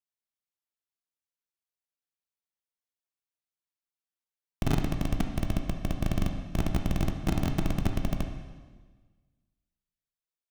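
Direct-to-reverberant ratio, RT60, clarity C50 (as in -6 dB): 4.0 dB, 1.4 s, 6.0 dB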